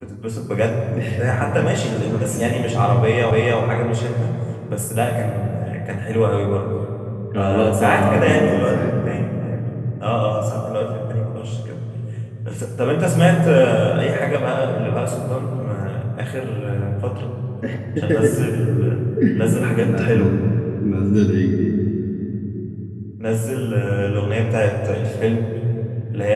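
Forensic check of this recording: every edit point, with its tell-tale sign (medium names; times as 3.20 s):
3.31 s: repeat of the last 0.29 s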